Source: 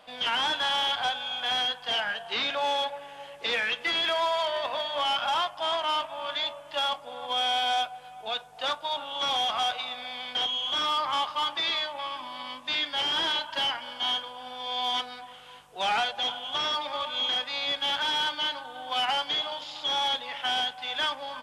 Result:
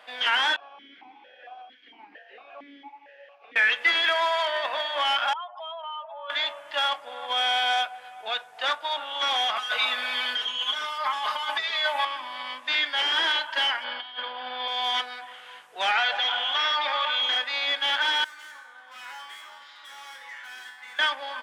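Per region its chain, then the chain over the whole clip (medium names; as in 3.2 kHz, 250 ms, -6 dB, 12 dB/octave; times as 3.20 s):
0.56–3.56 s: one-bit delta coder 32 kbps, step -48 dBFS + stepped vowel filter 4.4 Hz
5.33–6.30 s: spectral contrast enhancement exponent 2.3 + compression 4:1, threshold -37 dBFS + loudspeaker Doppler distortion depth 0.22 ms
9.56–12.05 s: treble shelf 11 kHz +11 dB + compressor with a negative ratio -33 dBFS + comb 4.7 ms, depth 94%
13.84–14.68 s: bass shelf 210 Hz +6 dB + compressor with a negative ratio -34 dBFS, ratio -0.5 + steep low-pass 4.9 kHz 72 dB/octave
15.91–17.23 s: low-pass 5.1 kHz + bass shelf 410 Hz -11.5 dB + level flattener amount 70%
18.24–20.99 s: high-order bell 1.5 kHz +10.5 dB 1.3 oct + overload inside the chain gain 30.5 dB + feedback comb 76 Hz, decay 0.82 s, harmonics odd, mix 90%
whole clip: high-pass 330 Hz 12 dB/octave; peaking EQ 1.8 kHz +10 dB 0.91 oct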